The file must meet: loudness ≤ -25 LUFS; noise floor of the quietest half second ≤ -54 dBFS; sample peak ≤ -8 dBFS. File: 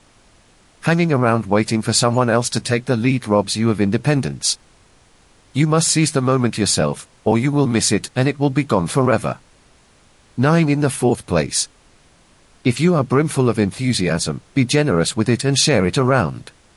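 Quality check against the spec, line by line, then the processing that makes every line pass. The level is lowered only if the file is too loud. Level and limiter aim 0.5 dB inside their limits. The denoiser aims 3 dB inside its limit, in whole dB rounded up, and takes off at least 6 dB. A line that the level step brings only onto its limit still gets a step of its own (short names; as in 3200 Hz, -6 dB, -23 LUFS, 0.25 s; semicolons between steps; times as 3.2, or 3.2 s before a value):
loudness -18.0 LUFS: fail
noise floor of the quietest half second -52 dBFS: fail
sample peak -4.5 dBFS: fail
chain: gain -7.5 dB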